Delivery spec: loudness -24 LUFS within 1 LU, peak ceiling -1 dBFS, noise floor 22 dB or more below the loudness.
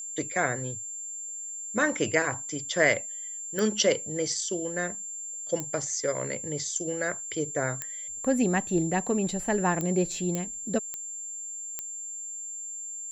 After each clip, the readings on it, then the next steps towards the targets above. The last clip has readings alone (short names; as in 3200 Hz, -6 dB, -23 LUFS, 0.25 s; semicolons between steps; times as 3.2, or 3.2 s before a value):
clicks 7; steady tone 7300 Hz; tone level -35 dBFS; loudness -29.0 LUFS; peak -9.0 dBFS; loudness target -24.0 LUFS
-> de-click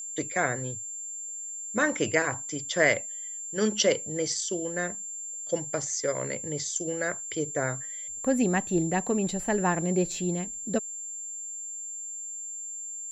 clicks 0; steady tone 7300 Hz; tone level -35 dBFS
-> notch 7300 Hz, Q 30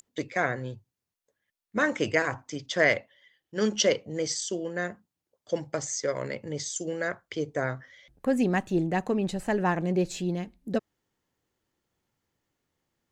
steady tone none; loudness -29.0 LUFS; peak -9.5 dBFS; loudness target -24.0 LUFS
-> gain +5 dB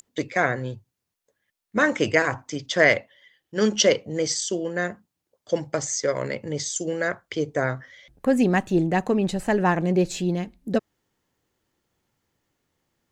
loudness -24.0 LUFS; peak -4.5 dBFS; noise floor -82 dBFS